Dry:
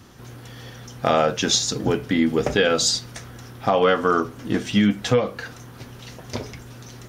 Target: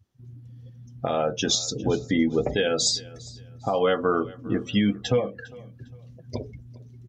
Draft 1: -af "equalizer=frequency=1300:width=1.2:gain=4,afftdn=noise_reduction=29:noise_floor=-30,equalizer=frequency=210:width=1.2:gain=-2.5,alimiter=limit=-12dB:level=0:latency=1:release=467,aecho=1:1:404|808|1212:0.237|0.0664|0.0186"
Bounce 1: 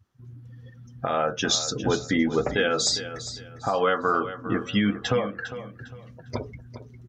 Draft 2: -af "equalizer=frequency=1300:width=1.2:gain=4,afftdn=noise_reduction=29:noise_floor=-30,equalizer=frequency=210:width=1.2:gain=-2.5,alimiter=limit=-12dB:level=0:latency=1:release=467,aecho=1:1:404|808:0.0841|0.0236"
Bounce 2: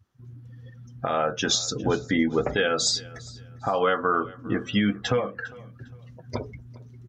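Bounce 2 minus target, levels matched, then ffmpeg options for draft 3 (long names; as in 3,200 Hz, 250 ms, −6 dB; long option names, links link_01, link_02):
1,000 Hz band +4.0 dB
-af "equalizer=frequency=1300:width=1.2:gain=-5,afftdn=noise_reduction=29:noise_floor=-30,equalizer=frequency=210:width=1.2:gain=-2.5,alimiter=limit=-12dB:level=0:latency=1:release=467,aecho=1:1:404|808:0.0841|0.0236"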